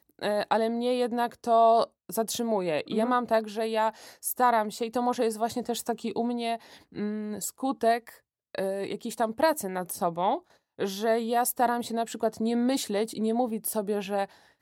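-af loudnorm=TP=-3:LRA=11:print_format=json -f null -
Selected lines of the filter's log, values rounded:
"input_i" : "-28.3",
"input_tp" : "-10.3",
"input_lra" : "4.0",
"input_thresh" : "-38.4",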